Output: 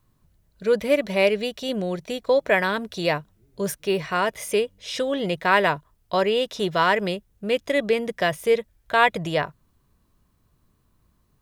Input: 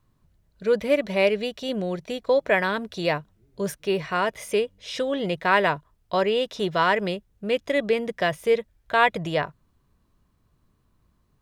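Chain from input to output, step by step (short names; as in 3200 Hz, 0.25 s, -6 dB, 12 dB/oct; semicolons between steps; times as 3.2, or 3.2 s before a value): high shelf 7400 Hz +7.5 dB; gain +1 dB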